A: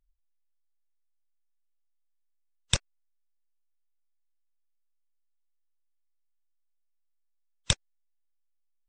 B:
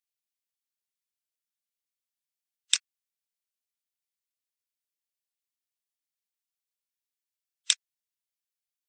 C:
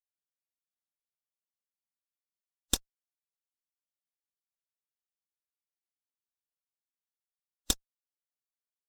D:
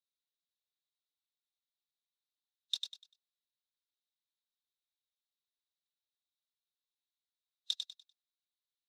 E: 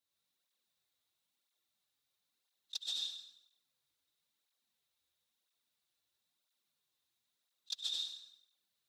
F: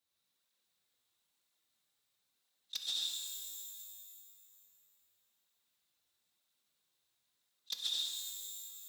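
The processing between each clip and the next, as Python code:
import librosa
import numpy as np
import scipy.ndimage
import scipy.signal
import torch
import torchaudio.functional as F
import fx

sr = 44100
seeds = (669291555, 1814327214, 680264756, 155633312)

y1 = scipy.signal.sosfilt(scipy.signal.bessel(4, 2300.0, 'highpass', norm='mag', fs=sr, output='sos'), x)
y1 = F.gain(torch.from_numpy(y1), 4.0).numpy()
y2 = fx.lower_of_two(y1, sr, delay_ms=3.6)
y2 = fx.peak_eq(y2, sr, hz=2300.0, db=-13.5, octaves=0.58)
y2 = fx.upward_expand(y2, sr, threshold_db=-37.0, expansion=1.5)
y2 = F.gain(torch.from_numpy(y2), -2.5).numpy()
y3 = fx.over_compress(y2, sr, threshold_db=-29.0, ratio=-1.0)
y3 = fx.bandpass_q(y3, sr, hz=3800.0, q=7.5)
y3 = fx.echo_feedback(y3, sr, ms=98, feedback_pct=29, wet_db=-5.5)
y3 = F.gain(torch.from_numpy(y3), 6.0).numpy()
y4 = fx.rev_plate(y3, sr, seeds[0], rt60_s=0.84, hf_ratio=0.85, predelay_ms=80, drr_db=-2.5)
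y4 = fx.over_compress(y4, sr, threshold_db=-39.0, ratio=-0.5)
y4 = fx.flanger_cancel(y4, sr, hz=1.0, depth_ms=5.6)
y4 = F.gain(torch.from_numpy(y4), 4.5).numpy()
y5 = 10.0 ** (-29.0 / 20.0) * (np.abs((y4 / 10.0 ** (-29.0 / 20.0) + 3.0) % 4.0 - 2.0) - 1.0)
y5 = fx.rev_shimmer(y5, sr, seeds[1], rt60_s=2.3, semitones=12, shimmer_db=-2, drr_db=4.5)
y5 = F.gain(torch.from_numpy(y5), 1.5).numpy()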